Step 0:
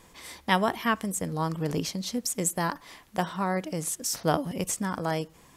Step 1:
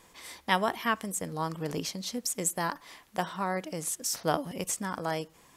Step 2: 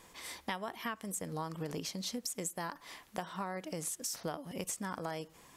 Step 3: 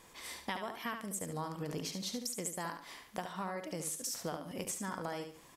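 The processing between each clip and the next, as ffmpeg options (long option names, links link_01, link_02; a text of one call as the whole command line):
ffmpeg -i in.wav -af "lowshelf=frequency=260:gain=-7,volume=-1.5dB" out.wav
ffmpeg -i in.wav -af "acompressor=threshold=-35dB:ratio=10" out.wav
ffmpeg -i in.wav -af "aecho=1:1:72|144|216|288:0.447|0.134|0.0402|0.0121,volume=-1dB" out.wav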